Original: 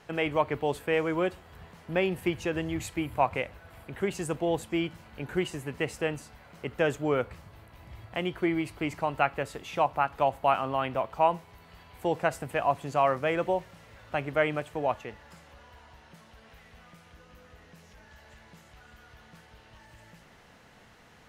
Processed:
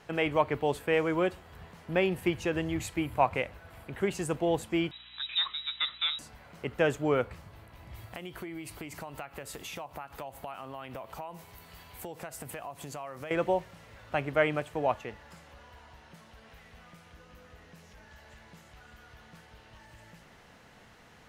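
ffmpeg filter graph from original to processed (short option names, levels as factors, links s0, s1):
-filter_complex "[0:a]asettb=1/sr,asplit=3[s0][s1][s2];[s0]atrim=end=4.914[s3];[s1]atrim=start=4.91:end=6.19,asetpts=PTS-STARTPTS,afade=t=in:d=0.004:c=qsin,afade=t=out:st=1.276:d=0.004:c=qsin,asoftclip=type=hard:threshold=0.075,lowpass=f=3400:t=q:w=0.5098,lowpass=f=3400:t=q:w=0.6013,lowpass=f=3400:t=q:w=0.9,lowpass=f=3400:t=q:w=2.563,afreqshift=-4000,aeval=exprs='val(0)+0.000562*(sin(2*PI*60*n/s)+sin(2*PI*2*60*n/s)/2+sin(2*PI*3*60*n/s)/3+sin(2*PI*4*60*n/s)/4+sin(2*PI*5*60*n/s)/5)':c=same[s4];[s2]atrim=start=6.186[s5];[s3][s4]acrossfade=d=0.004:c1=hsin:c2=qsin[s6];[s6][s5]acrossfade=d=0.004:c1=qsin:c2=hsin,asettb=1/sr,asplit=3[s7][s8][s9];[s7]atrim=end=7.944[s10];[s8]atrim=start=7.94:end=13.31,asetpts=PTS-STARTPTS,afade=t=in:d=0.004:c=qsin,afade=t=out:st=5.366:d=0.004:c=qsin,aemphasis=mode=production:type=50kf,acompressor=threshold=0.0141:ratio=8:attack=3.2:release=140:knee=1:detection=peak[s11];[s9]atrim=start=13.306[s12];[s10][s11]acrossfade=d=0.004:c1=hsin:c2=qsin[s13];[s13][s12]acrossfade=d=0.004:c1=qsin:c2=hsin"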